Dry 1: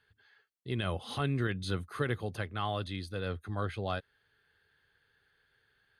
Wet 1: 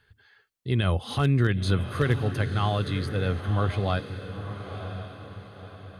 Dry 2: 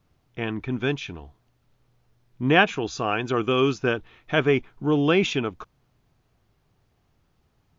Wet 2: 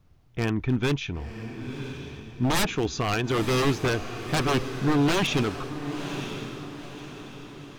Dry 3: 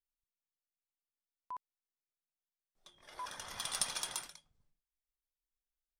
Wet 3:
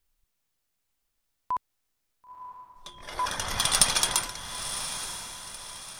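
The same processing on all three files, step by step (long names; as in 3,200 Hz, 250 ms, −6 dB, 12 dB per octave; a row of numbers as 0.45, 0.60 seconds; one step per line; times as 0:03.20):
wave folding −20 dBFS
low-shelf EQ 130 Hz +10 dB
on a send: feedback delay with all-pass diffusion 995 ms, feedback 44%, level −9.5 dB
on the sum: loudness normalisation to −27 LKFS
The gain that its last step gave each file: +5.5, +0.5, +14.5 decibels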